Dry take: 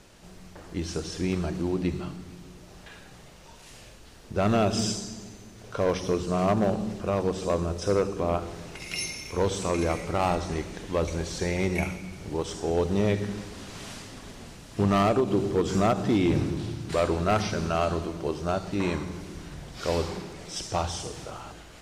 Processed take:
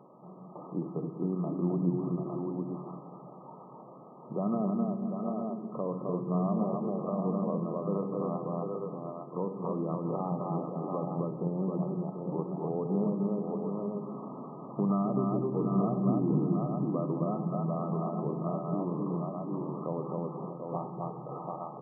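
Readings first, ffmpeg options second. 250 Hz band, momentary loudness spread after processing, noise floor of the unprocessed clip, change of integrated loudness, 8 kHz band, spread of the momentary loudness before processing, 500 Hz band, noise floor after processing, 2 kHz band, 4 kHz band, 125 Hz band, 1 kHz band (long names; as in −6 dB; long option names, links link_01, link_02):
−1.5 dB, 12 LU, −49 dBFS, −5.0 dB, below −40 dB, 18 LU, −6.5 dB, −49 dBFS, below −40 dB, below −40 dB, −3.0 dB, −6.5 dB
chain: -filter_complex "[0:a]tiltshelf=frequency=970:gain=-3.5,aecho=1:1:62|261|629|738|858:0.237|0.668|0.133|0.422|0.316,acrossover=split=220[link_01][link_02];[link_02]acompressor=threshold=-37dB:ratio=5[link_03];[link_01][link_03]amix=inputs=2:normalize=0,afftfilt=real='re*between(b*sr/4096,120,1300)':imag='im*between(b*sr/4096,120,1300)':win_size=4096:overlap=0.75,volume=3.5dB"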